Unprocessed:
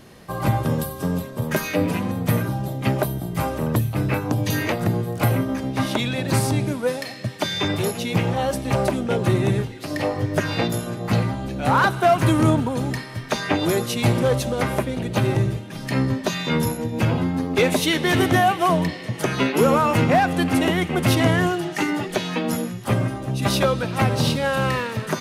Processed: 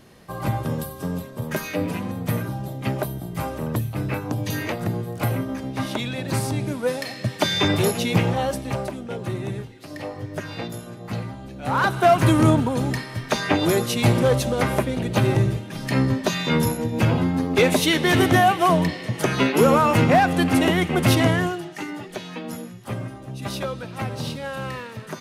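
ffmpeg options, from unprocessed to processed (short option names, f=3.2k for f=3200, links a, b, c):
-af "volume=13dB,afade=t=in:st=6.57:d=0.83:silence=0.446684,afade=t=out:st=8:d=0.89:silence=0.251189,afade=t=in:st=11.61:d=0.43:silence=0.316228,afade=t=out:st=21.13:d=0.57:silence=0.316228"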